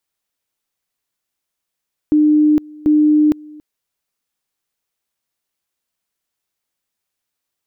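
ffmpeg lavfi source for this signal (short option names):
-f lavfi -i "aevalsrc='pow(10,(-8.5-25*gte(mod(t,0.74),0.46))/20)*sin(2*PI*302*t)':d=1.48:s=44100"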